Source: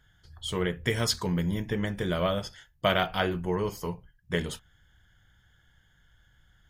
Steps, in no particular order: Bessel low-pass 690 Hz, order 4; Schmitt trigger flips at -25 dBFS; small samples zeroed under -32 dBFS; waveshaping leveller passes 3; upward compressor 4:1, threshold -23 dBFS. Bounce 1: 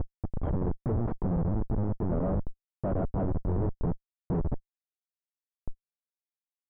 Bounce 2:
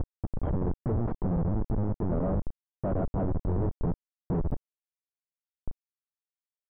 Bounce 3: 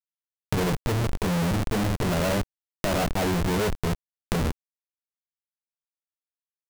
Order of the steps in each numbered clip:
upward compressor > small samples zeroed > Schmitt trigger > waveshaping leveller > Bessel low-pass; upward compressor > Schmitt trigger > waveshaping leveller > small samples zeroed > Bessel low-pass; Bessel low-pass > waveshaping leveller > Schmitt trigger > upward compressor > small samples zeroed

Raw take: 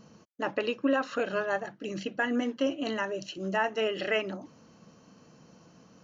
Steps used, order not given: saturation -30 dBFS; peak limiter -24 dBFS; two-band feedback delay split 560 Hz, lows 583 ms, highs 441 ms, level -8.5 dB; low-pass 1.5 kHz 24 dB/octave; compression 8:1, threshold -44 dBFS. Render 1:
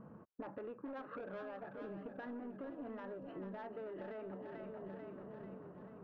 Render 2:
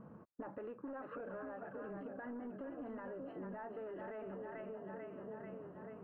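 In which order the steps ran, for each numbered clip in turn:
peak limiter > low-pass > saturation > two-band feedback delay > compression; two-band feedback delay > peak limiter > saturation > low-pass > compression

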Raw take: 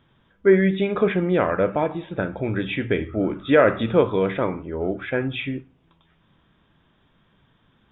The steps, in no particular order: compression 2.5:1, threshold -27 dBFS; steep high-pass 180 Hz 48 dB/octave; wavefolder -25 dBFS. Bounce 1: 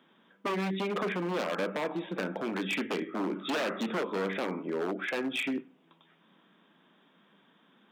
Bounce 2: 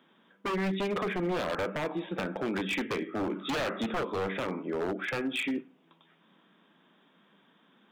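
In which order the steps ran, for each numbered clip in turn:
compression > wavefolder > steep high-pass; steep high-pass > compression > wavefolder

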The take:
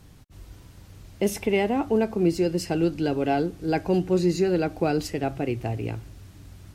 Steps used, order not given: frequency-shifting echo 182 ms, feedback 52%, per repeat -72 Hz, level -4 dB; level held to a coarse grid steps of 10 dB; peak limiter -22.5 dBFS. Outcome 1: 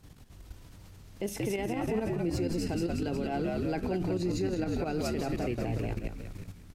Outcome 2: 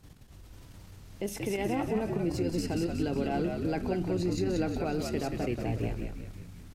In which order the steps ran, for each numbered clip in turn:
frequency-shifting echo > level held to a coarse grid > peak limiter; level held to a coarse grid > peak limiter > frequency-shifting echo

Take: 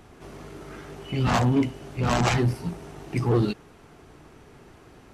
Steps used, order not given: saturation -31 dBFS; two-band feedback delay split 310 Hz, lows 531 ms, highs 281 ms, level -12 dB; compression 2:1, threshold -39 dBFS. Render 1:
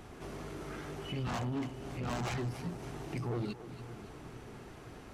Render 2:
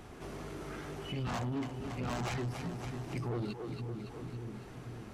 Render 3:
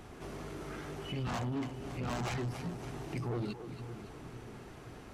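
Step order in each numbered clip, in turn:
compression > saturation > two-band feedback delay; two-band feedback delay > compression > saturation; compression > two-band feedback delay > saturation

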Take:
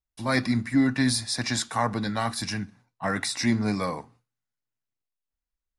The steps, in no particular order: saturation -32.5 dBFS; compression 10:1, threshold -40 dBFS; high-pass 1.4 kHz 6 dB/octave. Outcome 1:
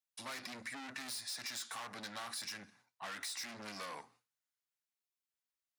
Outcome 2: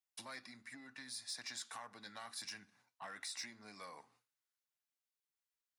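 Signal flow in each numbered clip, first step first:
saturation > high-pass > compression; compression > saturation > high-pass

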